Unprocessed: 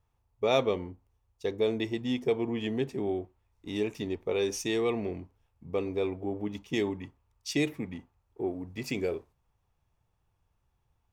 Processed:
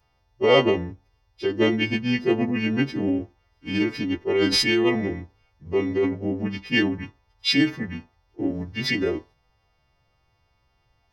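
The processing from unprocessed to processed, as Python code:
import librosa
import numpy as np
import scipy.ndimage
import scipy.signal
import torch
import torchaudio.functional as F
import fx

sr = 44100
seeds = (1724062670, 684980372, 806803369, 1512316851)

y = fx.freq_snap(x, sr, grid_st=2)
y = fx.notch(y, sr, hz=5100.0, q=11.0)
y = fx.formant_shift(y, sr, semitones=-3)
y = y * 10.0 ** (8.5 / 20.0)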